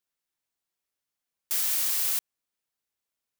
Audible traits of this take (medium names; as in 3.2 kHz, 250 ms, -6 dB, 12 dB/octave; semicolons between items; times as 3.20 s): noise floor -87 dBFS; spectral tilt +3.0 dB/octave